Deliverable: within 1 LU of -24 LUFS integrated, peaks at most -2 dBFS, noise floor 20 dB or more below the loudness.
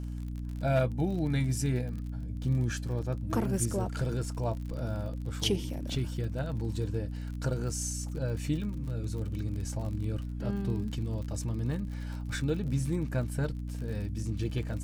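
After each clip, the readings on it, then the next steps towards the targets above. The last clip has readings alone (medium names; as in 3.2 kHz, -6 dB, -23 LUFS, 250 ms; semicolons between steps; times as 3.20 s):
tick rate 46 per s; hum 60 Hz; highest harmonic 300 Hz; hum level -34 dBFS; loudness -33.0 LUFS; peak level -16.5 dBFS; loudness target -24.0 LUFS
-> de-click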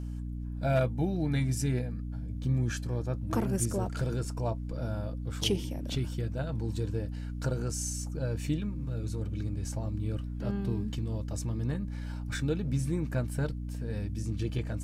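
tick rate 0.27 per s; hum 60 Hz; highest harmonic 300 Hz; hum level -34 dBFS
-> de-hum 60 Hz, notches 5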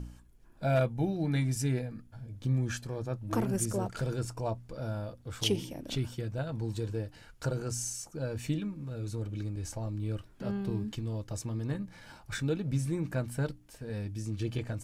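hum not found; loudness -34.5 LUFS; peak level -17.5 dBFS; loudness target -24.0 LUFS
-> trim +10.5 dB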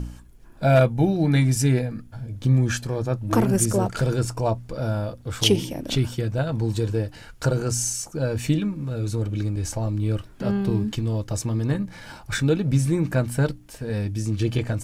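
loudness -24.0 LUFS; peak level -7.0 dBFS; noise floor -46 dBFS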